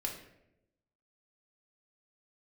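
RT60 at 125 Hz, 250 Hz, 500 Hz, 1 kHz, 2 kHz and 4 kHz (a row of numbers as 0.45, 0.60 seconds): 1.2, 1.1, 1.0, 0.70, 0.70, 0.50 seconds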